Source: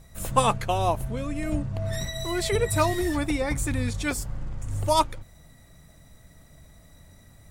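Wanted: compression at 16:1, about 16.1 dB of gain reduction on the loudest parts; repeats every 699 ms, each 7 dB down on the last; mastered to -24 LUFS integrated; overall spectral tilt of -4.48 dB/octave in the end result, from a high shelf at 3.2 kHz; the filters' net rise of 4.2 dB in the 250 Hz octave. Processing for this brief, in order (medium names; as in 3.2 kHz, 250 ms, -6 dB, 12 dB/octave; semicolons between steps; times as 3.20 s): peaking EQ 250 Hz +5.5 dB; treble shelf 3.2 kHz +5 dB; compression 16:1, threshold -30 dBFS; feedback delay 699 ms, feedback 45%, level -7 dB; trim +10.5 dB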